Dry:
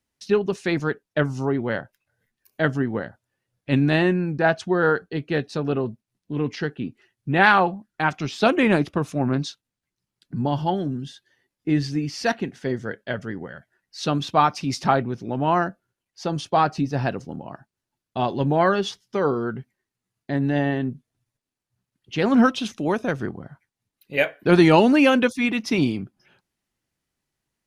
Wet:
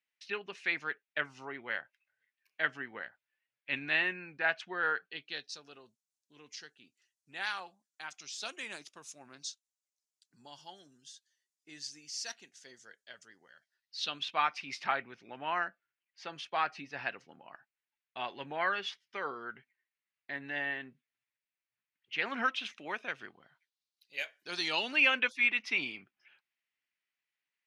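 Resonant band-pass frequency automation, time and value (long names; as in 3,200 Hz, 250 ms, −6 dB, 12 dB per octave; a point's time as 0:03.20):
resonant band-pass, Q 2.2
0:05.03 2,300 Hz
0:05.64 6,900 Hz
0:13.37 6,900 Hz
0:14.44 2,200 Hz
0:22.91 2,200 Hz
0:24.42 6,300 Hz
0:25.09 2,300 Hz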